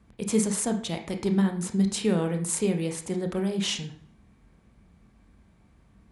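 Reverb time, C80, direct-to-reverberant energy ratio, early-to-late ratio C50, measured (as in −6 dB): 0.50 s, 13.5 dB, 4.5 dB, 9.5 dB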